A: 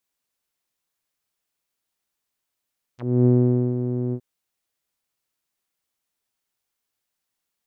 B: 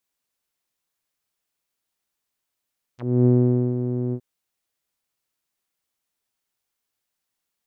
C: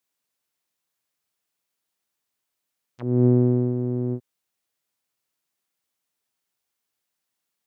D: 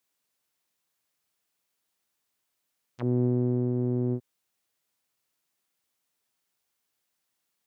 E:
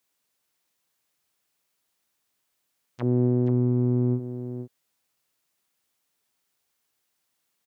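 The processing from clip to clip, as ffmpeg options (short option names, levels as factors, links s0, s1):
-af anull
-af "highpass=85"
-af "acompressor=threshold=0.0631:ratio=4,volume=1.19"
-af "aecho=1:1:477:0.335,volume=1.41"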